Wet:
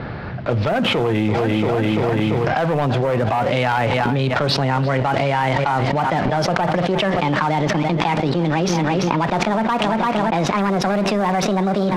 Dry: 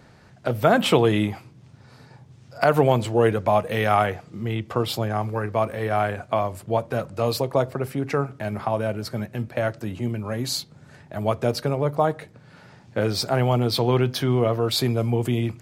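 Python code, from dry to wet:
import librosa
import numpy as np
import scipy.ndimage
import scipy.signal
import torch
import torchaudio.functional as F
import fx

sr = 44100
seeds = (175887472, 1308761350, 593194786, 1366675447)

p1 = fx.speed_glide(x, sr, from_pct=95, to_pct=166)
p2 = fx.env_lowpass_down(p1, sr, base_hz=2400.0, full_db=-16.5)
p3 = scipy.signal.sosfilt(scipy.signal.butter(8, 5300.0, 'lowpass', fs=sr, output='sos'), p2)
p4 = fx.leveller(p3, sr, passes=3)
p5 = fx.env_lowpass(p4, sr, base_hz=2500.0, full_db=-6.5)
p6 = p5 + fx.echo_feedback(p5, sr, ms=341, feedback_pct=44, wet_db=-18.0, dry=0)
p7 = fx.env_flatten(p6, sr, amount_pct=100)
y = p7 * 10.0 ** (-11.5 / 20.0)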